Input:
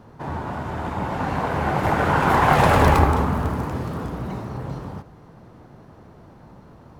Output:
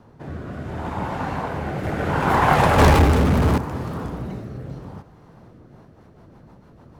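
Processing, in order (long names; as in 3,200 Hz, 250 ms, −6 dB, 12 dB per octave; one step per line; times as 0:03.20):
0:02.78–0:03.58: power curve on the samples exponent 0.5
rotating-speaker cabinet horn 0.7 Hz, later 6.7 Hz, at 0:05.32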